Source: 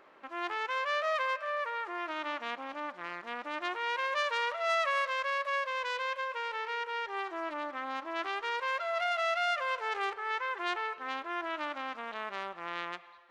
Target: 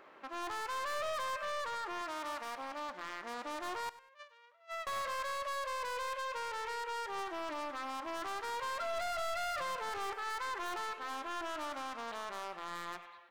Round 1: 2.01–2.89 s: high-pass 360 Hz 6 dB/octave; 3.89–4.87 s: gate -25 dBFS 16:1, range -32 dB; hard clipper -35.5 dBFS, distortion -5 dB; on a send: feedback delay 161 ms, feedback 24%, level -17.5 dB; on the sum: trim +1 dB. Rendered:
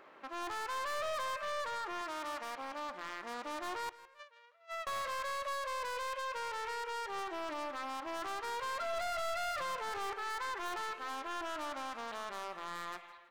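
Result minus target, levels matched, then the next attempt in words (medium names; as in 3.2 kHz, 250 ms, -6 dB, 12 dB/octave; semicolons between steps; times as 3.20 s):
echo 62 ms late
2.01–2.89 s: high-pass 360 Hz 6 dB/octave; 3.89–4.87 s: gate -25 dBFS 16:1, range -32 dB; hard clipper -35.5 dBFS, distortion -5 dB; on a send: feedback delay 99 ms, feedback 24%, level -17.5 dB; on the sum: trim +1 dB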